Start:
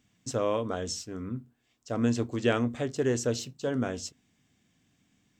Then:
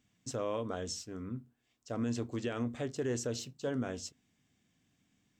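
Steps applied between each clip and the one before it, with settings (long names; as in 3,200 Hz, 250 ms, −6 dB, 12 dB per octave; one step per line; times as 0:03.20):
brickwall limiter −20 dBFS, peak gain reduction 9.5 dB
level −5 dB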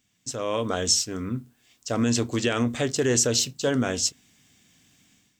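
high-shelf EQ 2,100 Hz +10.5 dB
automatic gain control gain up to 11.5 dB
level −1 dB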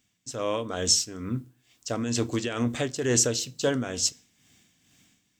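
amplitude tremolo 2.2 Hz, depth 57%
on a send at −20 dB: convolution reverb RT60 0.50 s, pre-delay 3 ms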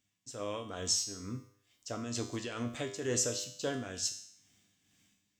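tuned comb filter 100 Hz, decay 0.67 s, harmonics all, mix 80%
level +1.5 dB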